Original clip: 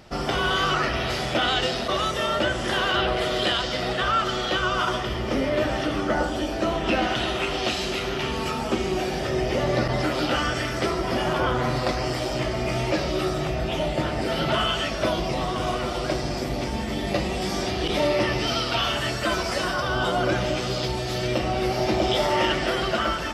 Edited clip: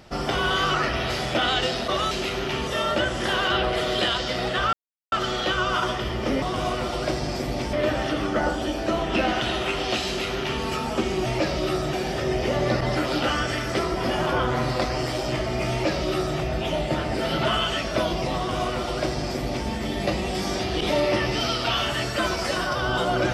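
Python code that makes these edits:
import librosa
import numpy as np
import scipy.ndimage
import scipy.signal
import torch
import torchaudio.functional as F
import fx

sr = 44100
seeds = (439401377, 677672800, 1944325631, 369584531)

y = fx.edit(x, sr, fx.insert_silence(at_s=4.17, length_s=0.39),
    fx.duplicate(start_s=7.81, length_s=0.56, to_s=2.11),
    fx.duplicate(start_s=12.78, length_s=0.67, to_s=9.0),
    fx.duplicate(start_s=15.44, length_s=1.31, to_s=5.47), tone=tone)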